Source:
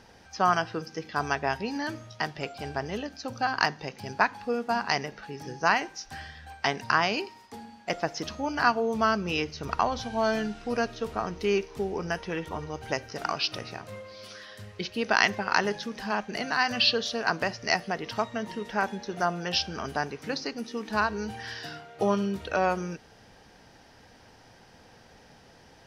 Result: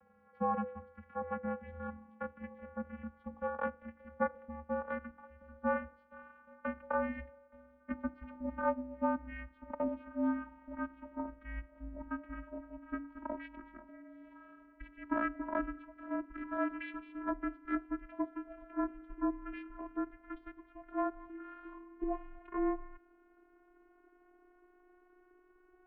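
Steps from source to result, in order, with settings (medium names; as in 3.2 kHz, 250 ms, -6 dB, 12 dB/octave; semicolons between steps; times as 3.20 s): vocoder on a note that slides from D4, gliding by +4 st; de-hum 221.3 Hz, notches 5; mistuned SSB -380 Hz 500–2400 Hz; trim -6 dB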